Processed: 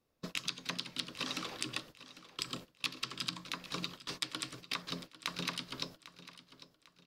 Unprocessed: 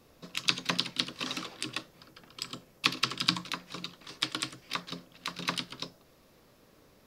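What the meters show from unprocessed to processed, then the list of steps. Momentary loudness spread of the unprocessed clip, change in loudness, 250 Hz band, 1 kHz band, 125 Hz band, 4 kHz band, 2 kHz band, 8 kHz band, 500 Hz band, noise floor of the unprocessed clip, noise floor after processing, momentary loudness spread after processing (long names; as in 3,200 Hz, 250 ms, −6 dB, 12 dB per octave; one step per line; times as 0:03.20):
14 LU, −6.5 dB, −5.0 dB, −6.5 dB, −5.0 dB, −6.5 dB, −6.5 dB, −4.0 dB, −4.0 dB, −62 dBFS, −72 dBFS, 16 LU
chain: noise gate −48 dBFS, range −25 dB
downward compressor 12 to 1, threshold −39 dBFS, peak gain reduction 20.5 dB
on a send: repeating echo 799 ms, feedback 37%, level −16 dB
on the sum: level +5 dB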